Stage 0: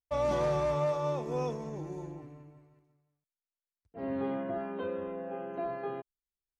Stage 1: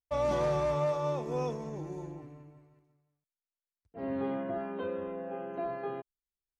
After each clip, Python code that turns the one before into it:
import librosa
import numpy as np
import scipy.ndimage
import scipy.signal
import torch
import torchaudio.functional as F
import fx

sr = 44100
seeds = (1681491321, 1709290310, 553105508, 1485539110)

y = x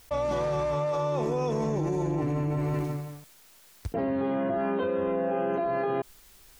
y = fx.env_flatten(x, sr, amount_pct=100)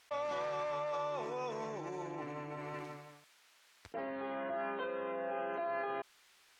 y = fx.bandpass_q(x, sr, hz=2000.0, q=0.64)
y = y * librosa.db_to_amplitude(-3.0)